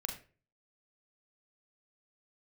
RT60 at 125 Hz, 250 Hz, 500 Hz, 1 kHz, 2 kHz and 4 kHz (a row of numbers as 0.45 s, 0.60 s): 0.55 s, 0.45 s, 0.45 s, 0.30 s, 0.35 s, 0.25 s